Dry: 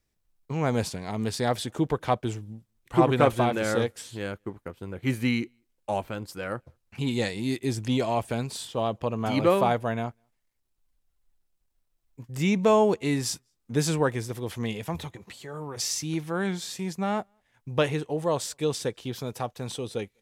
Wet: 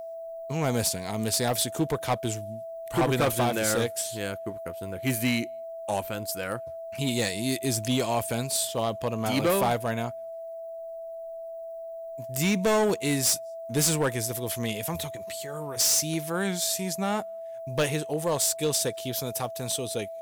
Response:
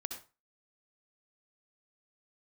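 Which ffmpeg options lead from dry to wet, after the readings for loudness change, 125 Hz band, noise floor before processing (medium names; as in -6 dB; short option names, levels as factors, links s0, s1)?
+0.5 dB, -1.0 dB, -75 dBFS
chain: -af "aeval=exprs='val(0)+0.0178*sin(2*PI*660*n/s)':c=same,aemphasis=mode=production:type=75fm,asoftclip=type=hard:threshold=0.112"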